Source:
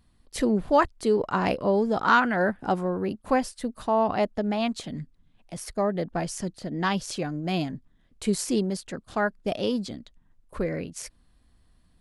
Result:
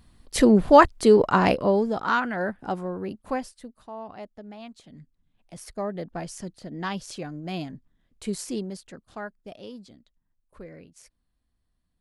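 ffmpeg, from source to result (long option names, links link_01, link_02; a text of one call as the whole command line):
ffmpeg -i in.wav -af "volume=17.5dB,afade=type=out:start_time=1.2:duration=0.82:silence=0.281838,afade=type=out:start_time=3.23:duration=0.55:silence=0.266073,afade=type=in:start_time=4.82:duration=0.81:silence=0.298538,afade=type=out:start_time=8.4:duration=1.13:silence=0.334965" out.wav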